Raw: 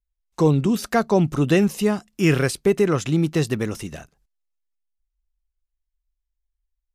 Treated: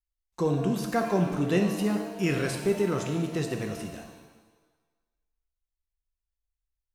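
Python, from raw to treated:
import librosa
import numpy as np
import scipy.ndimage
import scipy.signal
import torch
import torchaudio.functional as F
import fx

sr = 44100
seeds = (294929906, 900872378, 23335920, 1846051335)

y = fx.rev_shimmer(x, sr, seeds[0], rt60_s=1.2, semitones=7, shimmer_db=-8, drr_db=3.5)
y = y * librosa.db_to_amplitude(-9.0)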